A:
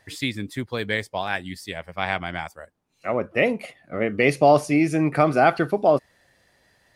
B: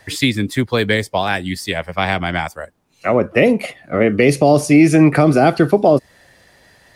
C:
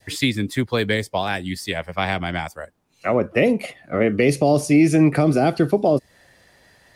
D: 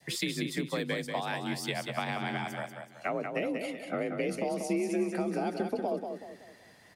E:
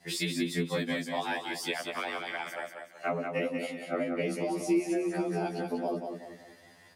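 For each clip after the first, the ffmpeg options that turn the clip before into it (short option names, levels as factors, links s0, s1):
-filter_complex "[0:a]acrossover=split=370|450|4000[s0][s1][s2][s3];[s2]acompressor=threshold=0.0398:ratio=6[s4];[s0][s1][s4][s3]amix=inputs=4:normalize=0,alimiter=level_in=4.22:limit=0.891:release=50:level=0:latency=1,volume=0.891"
-af "adynamicequalizer=threshold=0.0447:dfrequency=1300:dqfactor=0.76:tfrequency=1300:tqfactor=0.76:attack=5:release=100:ratio=0.375:range=2.5:mode=cutabove:tftype=bell,volume=0.631"
-af "acompressor=threshold=0.0562:ratio=5,afreqshift=46,aecho=1:1:188|376|564|752|940:0.501|0.195|0.0762|0.0297|0.0116,volume=0.562"
-af "afftfilt=real='re*2*eq(mod(b,4),0)':imag='im*2*eq(mod(b,4),0)':win_size=2048:overlap=0.75,volume=1.41"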